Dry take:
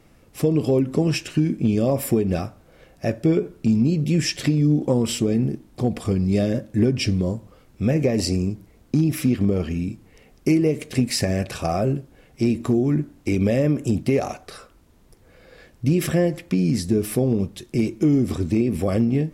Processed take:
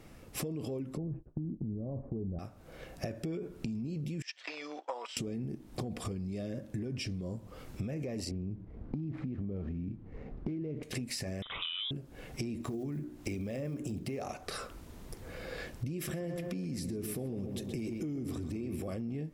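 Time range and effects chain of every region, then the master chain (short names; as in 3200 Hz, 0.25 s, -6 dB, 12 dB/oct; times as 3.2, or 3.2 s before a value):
0.97–2.39 expander -26 dBFS + LPF 1000 Hz 24 dB/oct + tilt -4 dB/oct
4.22–5.17 gate -23 dBFS, range -17 dB + HPF 770 Hz 24 dB/oct + air absorption 150 m
8.31–10.83 median filter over 15 samples + LPF 3000 Hz + low shelf 410 Hz +9 dB
11.42–11.91 HPF 270 Hz 6 dB/oct + inverted band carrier 3700 Hz
12.62–14.24 block floating point 7-bit + notches 60/120/180/240/300/360/420/480/540 Hz
15.95–18.93 high shelf 12000 Hz +8 dB + darkening echo 0.127 s, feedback 57%, low-pass 3600 Hz, level -10 dB
whole clip: AGC gain up to 7 dB; limiter -14 dBFS; compressor 10:1, threshold -35 dBFS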